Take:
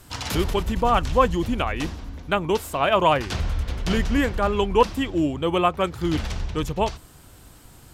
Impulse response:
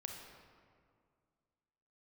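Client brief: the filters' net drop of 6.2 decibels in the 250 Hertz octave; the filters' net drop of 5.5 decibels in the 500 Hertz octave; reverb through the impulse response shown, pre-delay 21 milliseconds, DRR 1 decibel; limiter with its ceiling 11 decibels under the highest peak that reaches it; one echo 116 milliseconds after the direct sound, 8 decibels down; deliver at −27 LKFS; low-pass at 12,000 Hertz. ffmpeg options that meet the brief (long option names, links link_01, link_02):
-filter_complex "[0:a]lowpass=12000,equalizer=frequency=250:width_type=o:gain=-7,equalizer=frequency=500:width_type=o:gain=-5,alimiter=limit=-18dB:level=0:latency=1,aecho=1:1:116:0.398,asplit=2[link_01][link_02];[1:a]atrim=start_sample=2205,adelay=21[link_03];[link_02][link_03]afir=irnorm=-1:irlink=0,volume=1.5dB[link_04];[link_01][link_04]amix=inputs=2:normalize=0,volume=-1dB"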